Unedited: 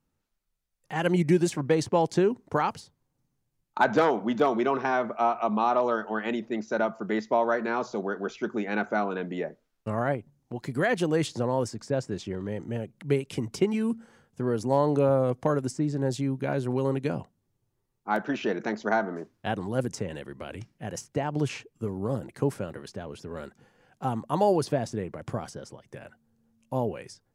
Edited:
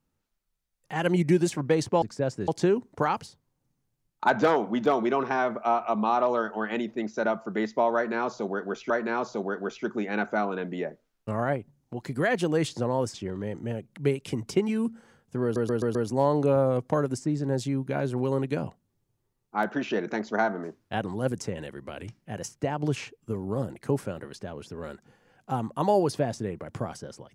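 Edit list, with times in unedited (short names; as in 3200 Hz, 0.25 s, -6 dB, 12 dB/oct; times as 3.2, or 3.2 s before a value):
7.49–8.44 loop, 2 plays
11.73–12.19 move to 2.02
14.48 stutter 0.13 s, 5 plays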